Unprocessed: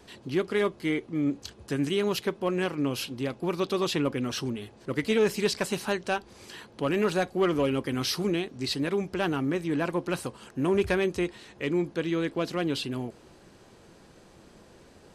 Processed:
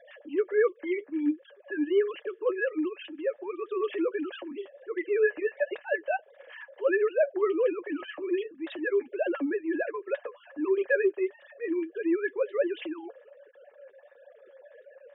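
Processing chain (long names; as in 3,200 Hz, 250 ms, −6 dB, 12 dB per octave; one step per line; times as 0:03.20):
three sine waves on the formant tracks
in parallel at −2 dB: downward compressor, threshold −40 dBFS, peak gain reduction 21 dB
on the sum: hollow resonant body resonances 570/1,700 Hz, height 17 dB, ringing for 45 ms
transient designer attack −6 dB, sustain −2 dB
flanger 1.4 Hz, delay 5.4 ms, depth 4.9 ms, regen +27%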